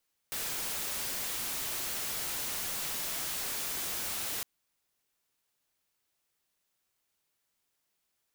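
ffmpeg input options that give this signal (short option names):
-f lavfi -i "anoisesrc=c=white:a=0.0291:d=4.11:r=44100:seed=1"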